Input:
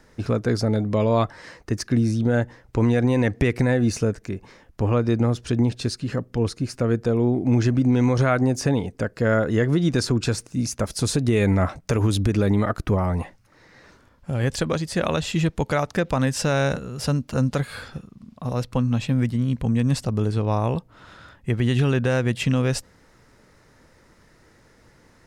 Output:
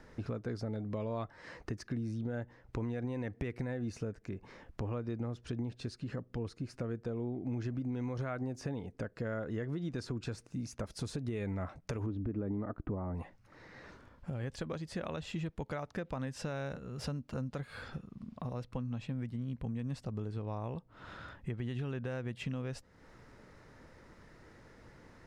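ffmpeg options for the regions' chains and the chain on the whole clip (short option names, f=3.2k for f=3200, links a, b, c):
-filter_complex "[0:a]asettb=1/sr,asplit=3[a][b][c];[a]atrim=end=12.064[d];[b]atrim=start=12.06:end=13.15,asetpts=PTS-STARTPTS,afade=t=in:d=0.004:c=qsin,afade=t=out:st=1.086:d=0.004:c=qsin,lowpass=1.3k,equalizer=f=280:t=o:w=0.71:g=7.5[e];[c]atrim=start=13.146[f];[d][e]acrossfade=d=0.004:c1=hsin:c2=qsin[g];[g][f]acrossfade=d=0.004:c1=qsin:c2=hsin,highshelf=f=5.2k:g=-12,acompressor=threshold=-39dB:ratio=3,volume=-1.5dB"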